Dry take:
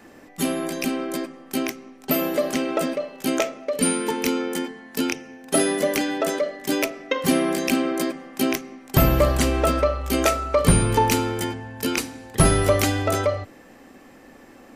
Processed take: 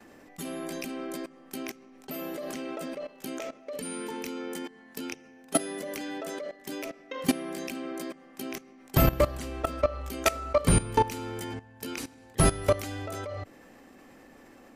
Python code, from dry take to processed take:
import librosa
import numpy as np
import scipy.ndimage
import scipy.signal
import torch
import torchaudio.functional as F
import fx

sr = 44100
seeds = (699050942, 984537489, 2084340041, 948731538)

y = fx.level_steps(x, sr, step_db=17)
y = y * 10.0 ** (-2.0 / 20.0)